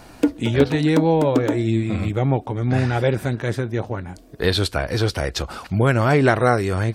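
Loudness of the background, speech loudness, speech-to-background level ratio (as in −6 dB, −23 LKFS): −25.0 LKFS, −20.5 LKFS, 4.5 dB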